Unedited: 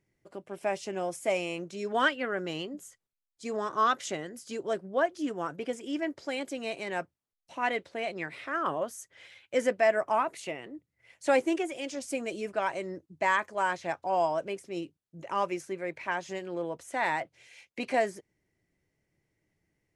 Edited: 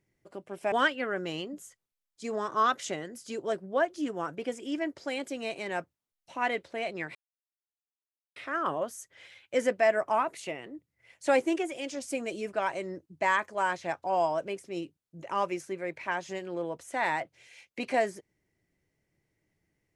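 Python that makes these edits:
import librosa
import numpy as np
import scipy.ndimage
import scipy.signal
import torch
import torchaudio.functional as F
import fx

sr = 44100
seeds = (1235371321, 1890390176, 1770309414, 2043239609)

y = fx.edit(x, sr, fx.cut(start_s=0.72, length_s=1.21),
    fx.insert_silence(at_s=8.36, length_s=1.21), tone=tone)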